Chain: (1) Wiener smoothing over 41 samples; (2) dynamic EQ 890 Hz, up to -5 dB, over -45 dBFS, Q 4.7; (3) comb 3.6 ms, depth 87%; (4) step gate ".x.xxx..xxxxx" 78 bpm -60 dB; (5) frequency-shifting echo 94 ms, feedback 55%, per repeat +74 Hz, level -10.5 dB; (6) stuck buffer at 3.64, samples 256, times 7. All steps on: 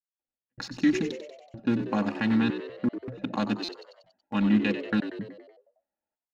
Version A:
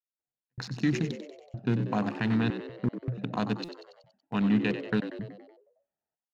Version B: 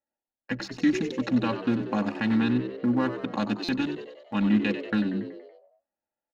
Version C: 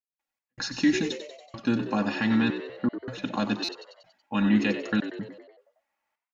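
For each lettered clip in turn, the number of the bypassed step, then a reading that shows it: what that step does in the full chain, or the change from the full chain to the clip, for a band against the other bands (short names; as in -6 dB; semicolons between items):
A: 3, 125 Hz band +6.0 dB; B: 4, crest factor change -1.5 dB; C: 1, 4 kHz band +3.5 dB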